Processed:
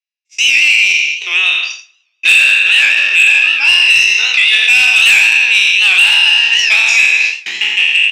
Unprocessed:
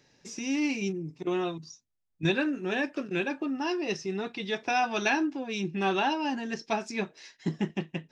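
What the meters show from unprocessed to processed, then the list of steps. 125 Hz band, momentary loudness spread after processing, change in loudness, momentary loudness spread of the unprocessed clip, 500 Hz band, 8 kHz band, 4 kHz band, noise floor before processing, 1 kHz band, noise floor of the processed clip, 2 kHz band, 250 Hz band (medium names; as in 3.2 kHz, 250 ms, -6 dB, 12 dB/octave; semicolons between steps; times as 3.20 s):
under -10 dB, 7 LU, +23.5 dB, 9 LU, no reading, +23.5 dB, +29.5 dB, -70 dBFS, +1.5 dB, -64 dBFS, +27.5 dB, under -15 dB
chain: spectral sustain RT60 1.39 s; gate -35 dBFS, range -52 dB; hard clipper -20.5 dBFS, distortion -16 dB; frequency shift +20 Hz; resonant high-pass 2.6 kHz, resonance Q 4.6; saturation -17 dBFS, distortion -15 dB; on a send: delay 84 ms -10.5 dB; on the sum: two-slope reverb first 0.79 s, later 2 s, from -24 dB, DRR 19 dB; loudness maximiser +20 dB; warped record 78 rpm, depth 100 cents; trim -1 dB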